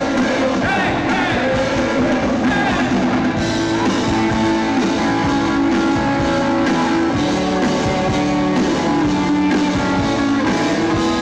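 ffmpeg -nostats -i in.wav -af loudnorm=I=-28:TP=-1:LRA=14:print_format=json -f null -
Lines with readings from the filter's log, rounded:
"input_i" : "-16.7",
"input_tp" : "-10.7",
"input_lra" : "0.2",
"input_thresh" : "-26.7",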